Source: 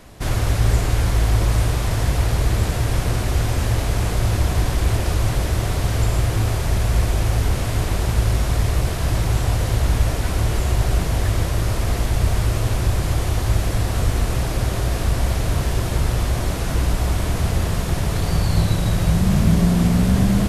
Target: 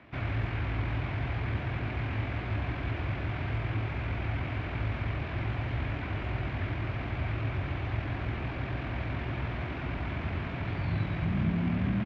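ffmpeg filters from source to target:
-filter_complex "[0:a]acrossover=split=250[a][b];[b]asoftclip=type=hard:threshold=-27.5dB[c];[a][c]amix=inputs=2:normalize=0,atempo=1.7,highpass=100,equalizer=f=180:t=q:w=4:g=-5,equalizer=f=280:t=q:w=4:g=4,equalizer=f=480:t=q:w=4:g=-7,equalizer=f=1.6k:t=q:w=4:g=3,equalizer=f=2.3k:t=q:w=4:g=7,lowpass=f=3k:w=0.5412,lowpass=f=3k:w=1.3066,volume=-7.5dB"

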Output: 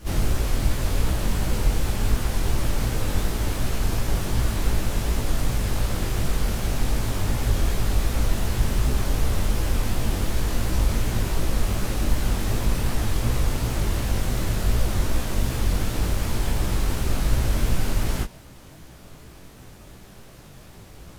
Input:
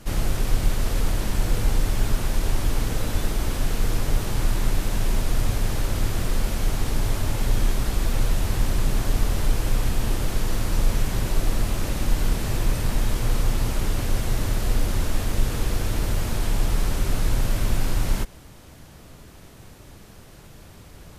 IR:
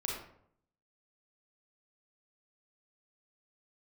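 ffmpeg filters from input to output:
-filter_complex "[0:a]bandreject=f=235.6:t=h:w=4,bandreject=f=471.2:t=h:w=4,bandreject=f=706.8:t=h:w=4,bandreject=f=942.4:t=h:w=4,bandreject=f=1.178k:t=h:w=4,bandreject=f=1.4136k:t=h:w=4,bandreject=f=1.6492k:t=h:w=4,bandreject=f=1.8848k:t=h:w=4,bandreject=f=2.1204k:t=h:w=4,bandreject=f=2.356k:t=h:w=4,bandreject=f=2.5916k:t=h:w=4,bandreject=f=2.8272k:t=h:w=4,bandreject=f=3.0628k:t=h:w=4,bandreject=f=3.2984k:t=h:w=4,bandreject=f=3.534k:t=h:w=4,bandreject=f=3.7696k:t=h:w=4,bandreject=f=4.0052k:t=h:w=4,bandreject=f=4.2408k:t=h:w=4,bandreject=f=4.4764k:t=h:w=4,bandreject=f=4.712k:t=h:w=4,asplit=2[a][b];[b]asetrate=88200,aresample=44100,atempo=0.5,volume=-9dB[c];[a][c]amix=inputs=2:normalize=0,flanger=delay=15.5:depth=7.1:speed=2.7,volume=3dB"

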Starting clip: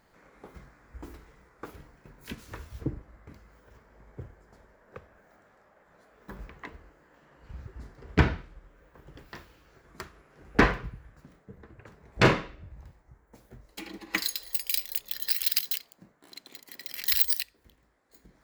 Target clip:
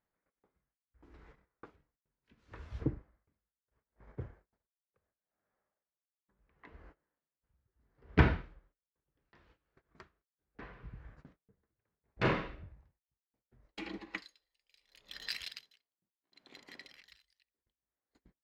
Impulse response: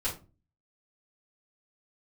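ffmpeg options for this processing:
-af "agate=range=-24dB:threshold=-54dB:ratio=16:detection=peak,lowpass=3.7k,aeval=exprs='val(0)*pow(10,-37*(0.5-0.5*cos(2*PI*0.72*n/s))/20)':c=same"

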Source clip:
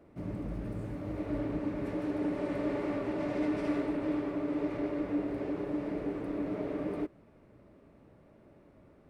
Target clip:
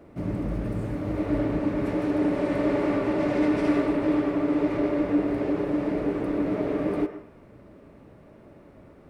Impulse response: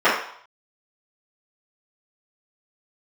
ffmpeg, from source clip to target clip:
-filter_complex "[0:a]asplit=2[a][b];[1:a]atrim=start_sample=2205,highshelf=f=3.4k:g=10,adelay=92[c];[b][c]afir=irnorm=-1:irlink=0,volume=-34.5dB[d];[a][d]amix=inputs=2:normalize=0,volume=8.5dB"

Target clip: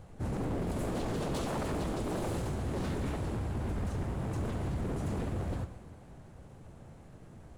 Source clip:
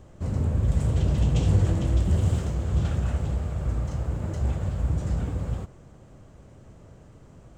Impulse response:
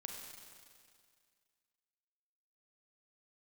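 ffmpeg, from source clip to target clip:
-filter_complex "[0:a]asplit=4[a][b][c][d];[b]asetrate=55563,aresample=44100,atempo=0.793701,volume=-11dB[e];[c]asetrate=58866,aresample=44100,atempo=0.749154,volume=0dB[f];[d]asetrate=66075,aresample=44100,atempo=0.66742,volume=-15dB[g];[a][e][f][g]amix=inputs=4:normalize=0,aeval=exprs='0.0708*(abs(mod(val(0)/0.0708+3,4)-2)-1)':c=same,asplit=2[h][i];[1:a]atrim=start_sample=2205,adelay=125[j];[i][j]afir=irnorm=-1:irlink=0,volume=-10dB[k];[h][k]amix=inputs=2:normalize=0,volume=-6dB"

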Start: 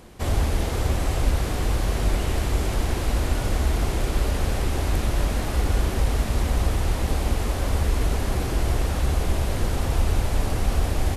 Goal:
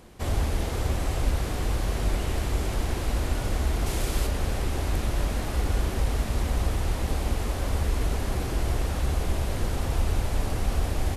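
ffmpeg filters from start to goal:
-filter_complex "[0:a]asettb=1/sr,asplit=3[a][b][c];[a]atrim=end=3.864[d];[b]atrim=start=3.86:end=4.27,asetpts=PTS-STARTPTS,afade=t=in:d=0.004:c=qsin,afade=t=out:st=0.406:d=0.004:c=qsin,highshelf=f=3.5k:g=7.5[e];[c]atrim=start=4.266[f];[d][e]acrossfade=d=0.004:c1=hsin:c2=qsin[g];[g][f]acrossfade=d=0.004:c1=qsin:c2=hsin,volume=-3.5dB"

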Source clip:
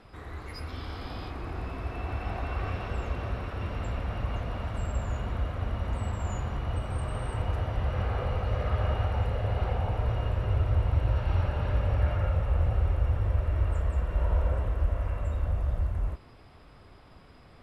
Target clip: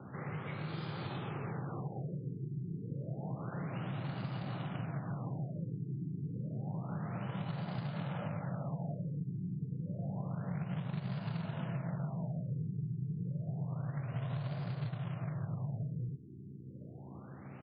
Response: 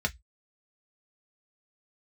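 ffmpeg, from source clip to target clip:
-filter_complex "[0:a]aeval=exprs='val(0)+0.00282*(sin(2*PI*60*n/s)+sin(2*PI*2*60*n/s)/2+sin(2*PI*3*60*n/s)/3+sin(2*PI*4*60*n/s)/4+sin(2*PI*5*60*n/s)/5)':c=same,afreqshift=77,asplit=2[a][b];[b]aecho=0:1:70:0.141[c];[a][c]amix=inputs=2:normalize=0,acompressor=threshold=-38dB:ratio=5,acrusher=bits=3:mode=log:mix=0:aa=0.000001,afftfilt=real='re*lt(b*sr/1024,420*pow(5000/420,0.5+0.5*sin(2*PI*0.29*pts/sr)))':imag='im*lt(b*sr/1024,420*pow(5000/420,0.5+0.5*sin(2*PI*0.29*pts/sr)))':win_size=1024:overlap=0.75,volume=1dB"

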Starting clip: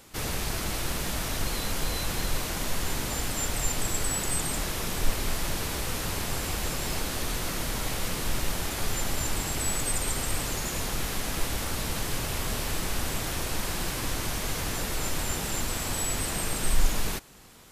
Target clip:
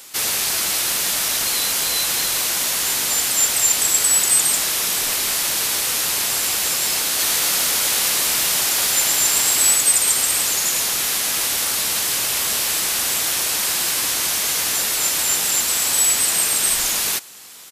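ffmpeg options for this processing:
-filter_complex "[0:a]highpass=f=560:p=1,highshelf=f=2.4k:g=11.5,asplit=3[a][b][c];[a]afade=t=out:st=7.18:d=0.02[d];[b]asplit=8[e][f][g][h][i][j][k][l];[f]adelay=112,afreqshift=110,volume=-4dB[m];[g]adelay=224,afreqshift=220,volume=-9.4dB[n];[h]adelay=336,afreqshift=330,volume=-14.7dB[o];[i]adelay=448,afreqshift=440,volume=-20.1dB[p];[j]adelay=560,afreqshift=550,volume=-25.4dB[q];[k]adelay=672,afreqshift=660,volume=-30.8dB[r];[l]adelay=784,afreqshift=770,volume=-36.1dB[s];[e][m][n][o][p][q][r][s]amix=inputs=8:normalize=0,afade=t=in:st=7.18:d=0.02,afade=t=out:st=9.74:d=0.02[t];[c]afade=t=in:st=9.74:d=0.02[u];[d][t][u]amix=inputs=3:normalize=0,volume=5dB"

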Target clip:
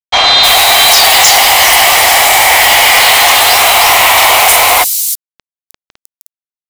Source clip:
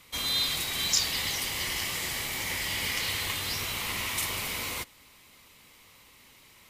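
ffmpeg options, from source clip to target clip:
-filter_complex "[0:a]acrossover=split=120[a][b];[a]acompressor=threshold=-58dB:ratio=12[c];[b]highpass=f=730:t=q:w=6.6[d];[c][d]amix=inputs=2:normalize=0,acrusher=bits=6:mix=0:aa=0.000001,acrossover=split=5300[e][f];[f]adelay=310[g];[e][g]amix=inputs=2:normalize=0,apsyclip=28dB,volume=-1.5dB"

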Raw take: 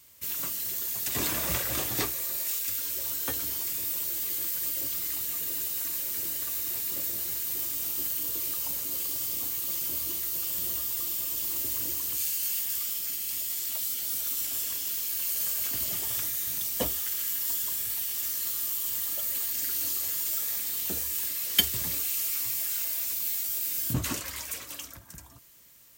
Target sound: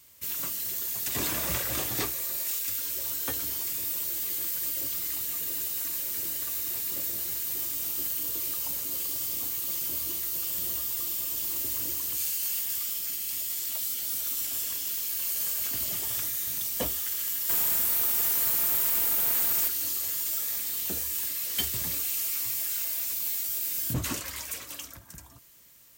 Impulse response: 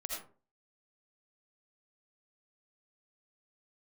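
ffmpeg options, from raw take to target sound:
-filter_complex "[0:a]asettb=1/sr,asplit=3[a][b][c];[a]atrim=end=17.494[d];[b]atrim=start=17.49:end=19.68,asetpts=PTS-STARTPTS,afade=t=in:d=0.004:c=qsin,afade=t=out:st=2.186:d=0.004:c=qsin,highshelf=f=7.2k:g=11[e];[c]atrim=start=19.676[f];[d][e]acrossfade=d=0.004:c1=hsin:c2=qsin[g];[g][f]acrossfade=d=0.004:c1=qsin:c2=hsin,asoftclip=type=hard:threshold=-23dB"

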